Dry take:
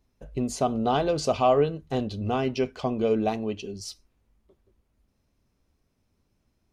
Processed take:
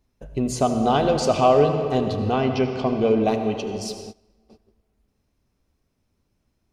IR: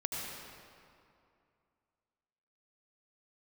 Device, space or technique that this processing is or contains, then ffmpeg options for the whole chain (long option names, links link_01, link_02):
keyed gated reverb: -filter_complex "[0:a]asettb=1/sr,asplit=3[link_01][link_02][link_03];[link_01]atrim=end=2.324[link_04];[link_02]atrim=start=2.32:end=3.24,asetpts=PTS-STARTPTS,afade=type=in:duration=0.004:curve=qsin,afade=type=out:start_time=0.916:duration=0.004:curve=qsin,lowpass=5300[link_05];[link_03]atrim=start=3.236[link_06];[link_04][link_05]acrossfade=duration=0.004:curve1=hsin:curve2=qsin[link_07];[link_07][link_06]acrossfade=duration=0.004:curve1=qsin:curve2=hsin,asplit=3[link_08][link_09][link_10];[1:a]atrim=start_sample=2205[link_11];[link_09][link_11]afir=irnorm=-1:irlink=0[link_12];[link_10]apad=whole_len=296395[link_13];[link_12][link_13]sidechaingate=range=-20dB:threshold=-60dB:ratio=16:detection=peak,volume=-3.5dB[link_14];[link_08][link_14]amix=inputs=2:normalize=0"